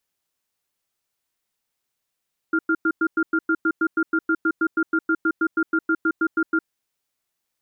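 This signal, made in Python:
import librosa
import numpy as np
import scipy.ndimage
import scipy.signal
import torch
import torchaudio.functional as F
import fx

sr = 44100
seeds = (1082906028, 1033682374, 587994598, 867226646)

y = fx.cadence(sr, length_s=4.09, low_hz=324.0, high_hz=1400.0, on_s=0.06, off_s=0.1, level_db=-19.5)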